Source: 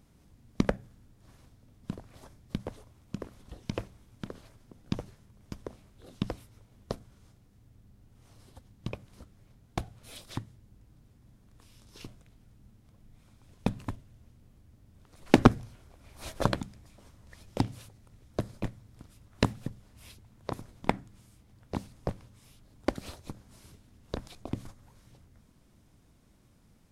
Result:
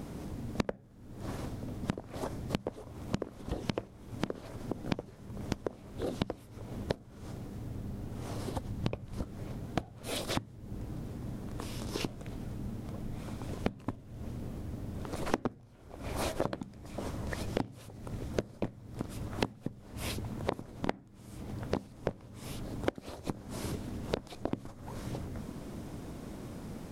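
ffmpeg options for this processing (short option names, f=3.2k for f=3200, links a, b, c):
-filter_complex "[0:a]asettb=1/sr,asplit=3[a][b][c];[a]atrim=end=8.504[d];[b]atrim=start=8.5:end=9.22,asetpts=PTS-STARTPTS,afade=t=in:d=0.004:c=qsin,afade=t=out:st=0.716:d=0.004:c=qsin,asubboost=boost=10.5:cutoff=170[e];[c]atrim=start=9.216[f];[d][e]acrossfade=d=0.004:c1=hsin:c2=qsin[g];[g][f]acrossfade=d=0.004:c1=qsin:c2=hsin,equalizer=f=420:w=0.38:g=10,acompressor=threshold=-45dB:ratio=10,volume=14dB"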